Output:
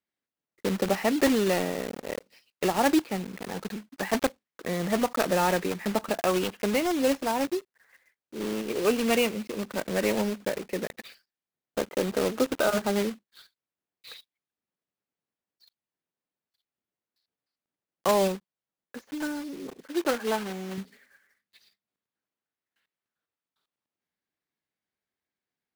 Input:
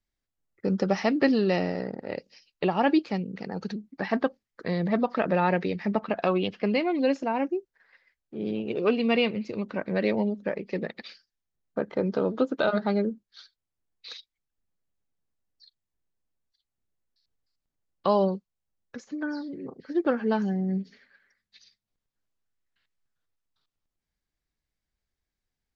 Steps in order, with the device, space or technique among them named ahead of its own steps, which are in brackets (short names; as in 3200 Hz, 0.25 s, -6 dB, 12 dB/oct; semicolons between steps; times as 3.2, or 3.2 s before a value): early digital voice recorder (BPF 200–3500 Hz; block floating point 3-bit); 19.87–20.78 tone controls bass -10 dB, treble -3 dB